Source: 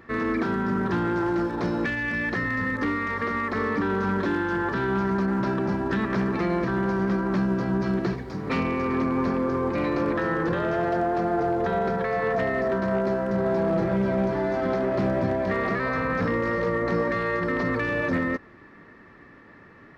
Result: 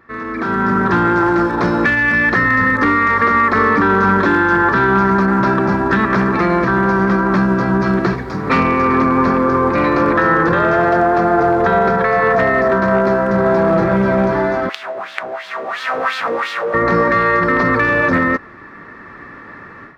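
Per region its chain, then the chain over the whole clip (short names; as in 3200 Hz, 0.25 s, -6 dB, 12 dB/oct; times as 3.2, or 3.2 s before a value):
14.69–16.74 bell 730 Hz +13 dB 0.28 oct + companded quantiser 2-bit + wah 2.9 Hz 450–3700 Hz, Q 2.4
whole clip: AGC gain up to 15 dB; bell 1300 Hz +7.5 dB 1.2 oct; notch 3000 Hz, Q 20; gain -4 dB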